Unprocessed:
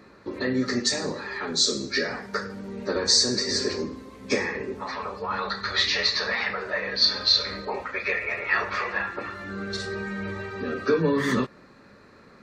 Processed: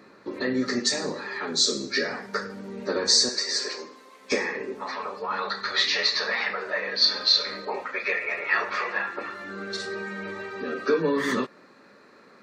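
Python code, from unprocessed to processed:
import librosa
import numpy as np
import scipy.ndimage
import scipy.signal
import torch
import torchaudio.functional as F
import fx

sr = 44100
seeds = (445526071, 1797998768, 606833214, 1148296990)

y = fx.highpass(x, sr, hz=fx.steps((0.0, 170.0), (3.29, 660.0), (4.32, 250.0)), slope=12)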